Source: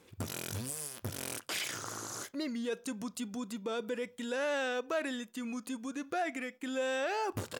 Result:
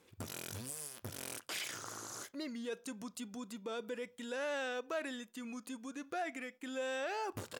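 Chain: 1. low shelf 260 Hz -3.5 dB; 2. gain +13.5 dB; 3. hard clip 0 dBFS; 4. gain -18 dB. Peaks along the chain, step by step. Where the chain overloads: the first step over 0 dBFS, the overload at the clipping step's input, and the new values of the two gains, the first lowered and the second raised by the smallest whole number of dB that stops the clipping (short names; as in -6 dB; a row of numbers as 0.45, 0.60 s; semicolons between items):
-19.5, -6.0, -6.0, -24.0 dBFS; no overload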